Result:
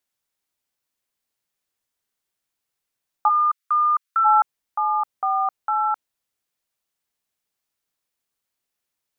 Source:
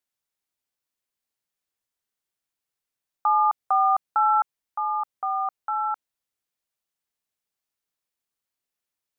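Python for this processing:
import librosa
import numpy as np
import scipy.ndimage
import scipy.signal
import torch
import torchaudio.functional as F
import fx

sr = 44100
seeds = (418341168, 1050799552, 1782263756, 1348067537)

y = fx.steep_highpass(x, sr, hz=1100.0, slope=72, at=(3.28, 4.24), fade=0.02)
y = y * librosa.db_to_amplitude(4.5)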